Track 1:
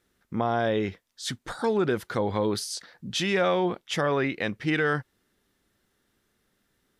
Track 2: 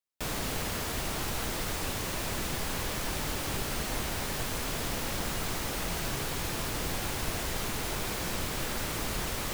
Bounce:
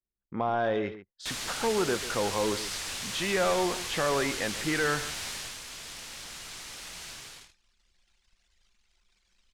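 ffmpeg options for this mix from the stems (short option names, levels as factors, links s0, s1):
-filter_complex "[0:a]asplit=2[s0][s1];[s1]highpass=f=720:p=1,volume=3.55,asoftclip=type=tanh:threshold=0.237[s2];[s0][s2]amix=inputs=2:normalize=0,lowpass=f=1600:p=1,volume=0.501,volume=0.668,asplit=2[s3][s4];[s4]volume=0.211[s5];[1:a]lowpass=8200,tiltshelf=f=1300:g=-9,adelay=1050,volume=0.631,afade=t=out:st=5.28:d=0.33:silence=0.473151,afade=t=out:st=7.08:d=0.48:silence=0.298538[s6];[s5]aecho=0:1:140:1[s7];[s3][s6][s7]amix=inputs=3:normalize=0,anlmdn=0.01"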